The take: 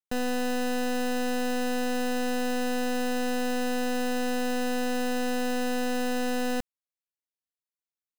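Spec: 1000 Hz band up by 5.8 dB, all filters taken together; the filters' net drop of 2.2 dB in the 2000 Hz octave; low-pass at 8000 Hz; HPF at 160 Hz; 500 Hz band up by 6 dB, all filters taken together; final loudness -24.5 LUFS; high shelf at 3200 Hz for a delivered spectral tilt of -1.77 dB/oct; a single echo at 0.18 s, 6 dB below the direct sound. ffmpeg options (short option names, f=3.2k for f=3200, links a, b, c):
-af "highpass=160,lowpass=8k,equalizer=f=500:t=o:g=5,equalizer=f=1k:t=o:g=7.5,equalizer=f=2k:t=o:g=-4.5,highshelf=f=3.2k:g=-7.5,aecho=1:1:180:0.501,volume=2.5dB"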